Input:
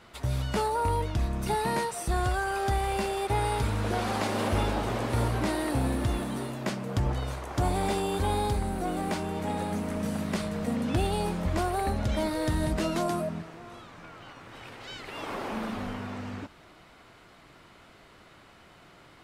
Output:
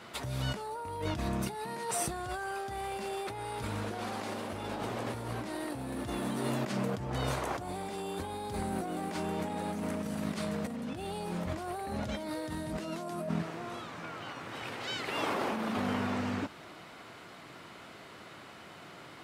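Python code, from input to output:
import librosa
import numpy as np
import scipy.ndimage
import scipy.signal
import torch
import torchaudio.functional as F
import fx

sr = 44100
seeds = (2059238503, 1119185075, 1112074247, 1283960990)

y = scipy.signal.sosfilt(scipy.signal.butter(2, 120.0, 'highpass', fs=sr, output='sos'), x)
y = fx.over_compress(y, sr, threshold_db=-36.0, ratio=-1.0)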